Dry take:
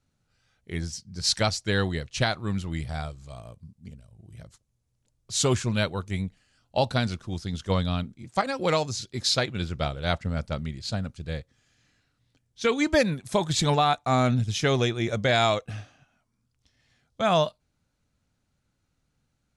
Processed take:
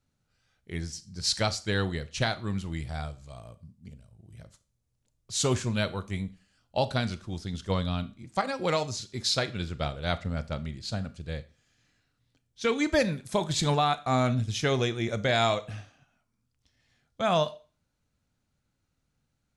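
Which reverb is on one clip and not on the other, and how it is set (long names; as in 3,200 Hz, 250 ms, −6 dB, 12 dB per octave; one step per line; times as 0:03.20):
four-comb reverb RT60 0.36 s, combs from 27 ms, DRR 14 dB
level −3 dB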